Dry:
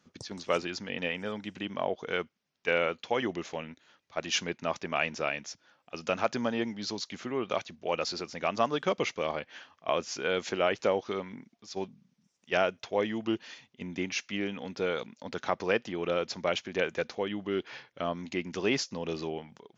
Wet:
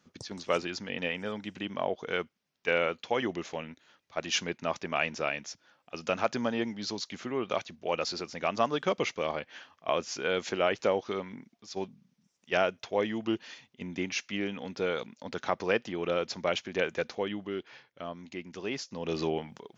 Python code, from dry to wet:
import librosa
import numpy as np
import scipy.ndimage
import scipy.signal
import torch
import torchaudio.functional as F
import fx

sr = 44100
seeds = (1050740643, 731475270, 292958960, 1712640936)

y = fx.gain(x, sr, db=fx.line((17.29, 0.0), (17.7, -7.0), (18.8, -7.0), (19.22, 5.0)))